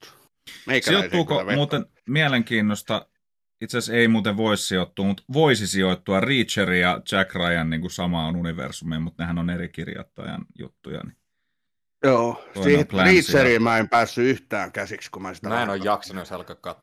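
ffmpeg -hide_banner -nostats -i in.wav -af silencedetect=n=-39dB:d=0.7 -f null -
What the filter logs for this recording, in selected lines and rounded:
silence_start: 11.10
silence_end: 12.03 | silence_duration: 0.93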